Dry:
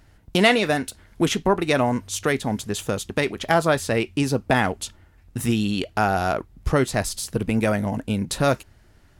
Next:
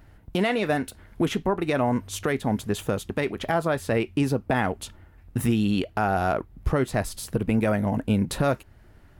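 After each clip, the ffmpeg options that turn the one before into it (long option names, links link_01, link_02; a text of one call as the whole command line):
ffmpeg -i in.wav -af "equalizer=frequency=6200:width=0.58:gain=-9.5,alimiter=limit=-15.5dB:level=0:latency=1:release=335,volume=2.5dB" out.wav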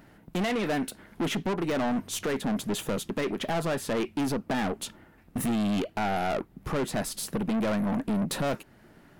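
ffmpeg -i in.wav -af "lowshelf=frequency=120:width_type=q:width=1.5:gain=-13.5,aeval=exprs='0.335*(cos(1*acos(clip(val(0)/0.335,-1,1)))-cos(1*PI/2))+0.0211*(cos(8*acos(clip(val(0)/0.335,-1,1)))-cos(8*PI/2))':channel_layout=same,asoftclip=type=tanh:threshold=-27dB,volume=2.5dB" out.wav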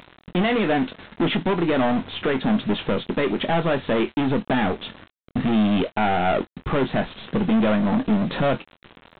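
ffmpeg -i in.wav -filter_complex "[0:a]aresample=8000,acrusher=bits=7:mix=0:aa=0.000001,aresample=44100,asplit=2[link_01][link_02];[link_02]adelay=23,volume=-10dB[link_03];[link_01][link_03]amix=inputs=2:normalize=0,volume=7dB" out.wav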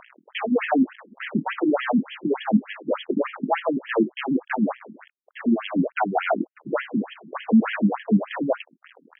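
ffmpeg -i in.wav -af "afftfilt=real='re*between(b*sr/1024,230*pow(2400/230,0.5+0.5*sin(2*PI*3.4*pts/sr))/1.41,230*pow(2400/230,0.5+0.5*sin(2*PI*3.4*pts/sr))*1.41)':imag='im*between(b*sr/1024,230*pow(2400/230,0.5+0.5*sin(2*PI*3.4*pts/sr))/1.41,230*pow(2400/230,0.5+0.5*sin(2*PI*3.4*pts/sr))*1.41)':win_size=1024:overlap=0.75,volume=5dB" out.wav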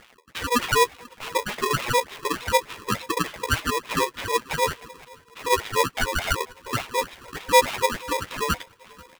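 ffmpeg -i in.wav -af "flanger=delay=7:depth=7.3:regen=-4:speed=1.6:shape=triangular,aecho=1:1:486|972|1458:0.0631|0.0303|0.0145,aeval=exprs='val(0)*sgn(sin(2*PI*730*n/s))':channel_layout=same,volume=1dB" out.wav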